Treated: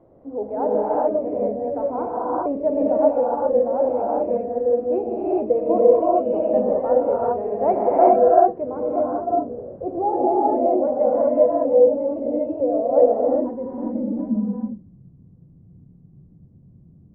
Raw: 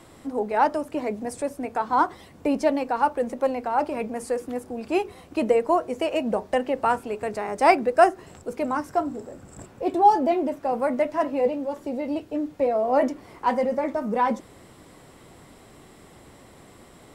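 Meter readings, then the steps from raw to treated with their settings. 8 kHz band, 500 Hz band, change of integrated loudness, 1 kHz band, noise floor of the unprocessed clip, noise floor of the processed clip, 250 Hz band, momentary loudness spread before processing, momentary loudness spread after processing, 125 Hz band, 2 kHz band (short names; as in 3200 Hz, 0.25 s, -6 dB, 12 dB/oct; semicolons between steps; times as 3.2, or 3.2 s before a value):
under -35 dB, +7.0 dB, +4.5 dB, +0.5 dB, -50 dBFS, -50 dBFS, +3.0 dB, 11 LU, 10 LU, n/a, under -15 dB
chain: non-linear reverb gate 0.44 s rising, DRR -6.5 dB; low-pass sweep 580 Hz -> 160 Hz, 12.96–14.96; gain -6.5 dB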